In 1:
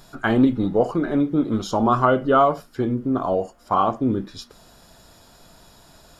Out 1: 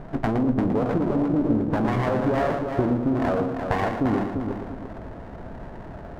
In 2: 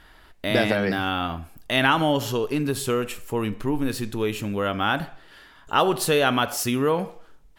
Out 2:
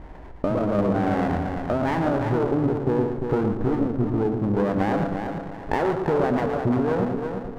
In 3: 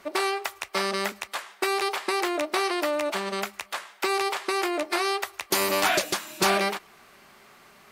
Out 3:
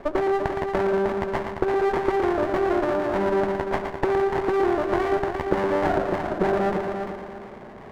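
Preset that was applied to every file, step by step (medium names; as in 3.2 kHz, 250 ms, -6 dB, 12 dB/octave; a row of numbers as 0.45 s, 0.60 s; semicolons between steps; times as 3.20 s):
steep low-pass 1.1 kHz 48 dB/octave; peak limiter -16.5 dBFS; compression 6:1, threshold -35 dBFS; multi-head delay 115 ms, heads first and third, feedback 50%, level -7 dB; sliding maximum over 17 samples; normalise loudness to -24 LUFS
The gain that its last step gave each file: +13.5 dB, +14.5 dB, +14.5 dB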